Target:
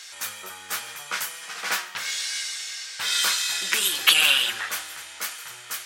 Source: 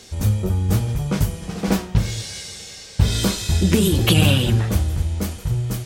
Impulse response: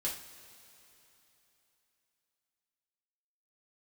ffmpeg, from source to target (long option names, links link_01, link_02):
-filter_complex "[0:a]highpass=frequency=1500:width_type=q:width=1.7,asplit=2[link_01][link_02];[1:a]atrim=start_sample=2205,adelay=119[link_03];[link_02][link_03]afir=irnorm=-1:irlink=0,volume=-23.5dB[link_04];[link_01][link_04]amix=inputs=2:normalize=0,volume=2.5dB"